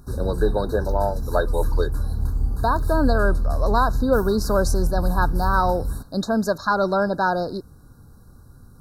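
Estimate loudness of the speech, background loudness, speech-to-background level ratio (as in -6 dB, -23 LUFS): -23.5 LUFS, -27.0 LUFS, 3.5 dB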